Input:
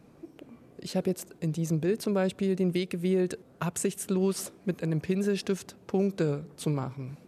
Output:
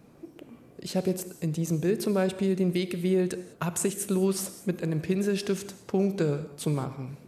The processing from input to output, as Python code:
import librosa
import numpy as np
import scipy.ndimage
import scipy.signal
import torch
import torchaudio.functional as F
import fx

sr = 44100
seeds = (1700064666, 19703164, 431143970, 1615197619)

y = fx.high_shelf(x, sr, hz=10000.0, db=5.5)
y = fx.rev_gated(y, sr, seeds[0], gate_ms=230, shape='flat', drr_db=11.0)
y = y * 10.0 ** (1.0 / 20.0)